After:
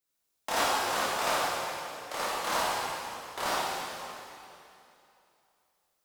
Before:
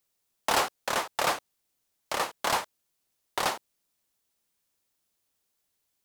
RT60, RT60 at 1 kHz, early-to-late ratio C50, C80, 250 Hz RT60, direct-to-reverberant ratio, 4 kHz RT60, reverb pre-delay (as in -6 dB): 2.8 s, 2.8 s, -4.5 dB, -2.5 dB, 2.8 s, -9.5 dB, 2.6 s, 7 ms